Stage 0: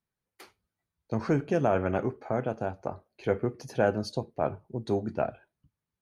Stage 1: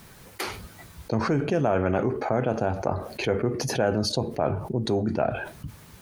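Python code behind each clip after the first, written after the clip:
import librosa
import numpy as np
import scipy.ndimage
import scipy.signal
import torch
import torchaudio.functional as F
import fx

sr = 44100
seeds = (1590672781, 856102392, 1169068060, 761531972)

y = fx.env_flatten(x, sr, amount_pct=70)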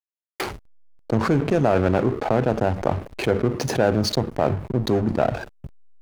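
y = fx.backlash(x, sr, play_db=-27.0)
y = F.gain(torch.from_numpy(y), 5.0).numpy()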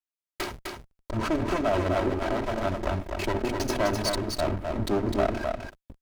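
y = fx.lower_of_two(x, sr, delay_ms=3.1)
y = y + 10.0 ** (-4.5 / 20.0) * np.pad(y, (int(255 * sr / 1000.0), 0))[:len(y)]
y = F.gain(torch.from_numpy(y), -3.0).numpy()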